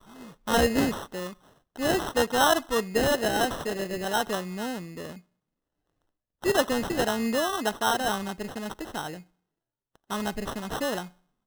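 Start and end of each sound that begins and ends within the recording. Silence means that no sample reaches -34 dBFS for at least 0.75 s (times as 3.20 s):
6.44–9.17 s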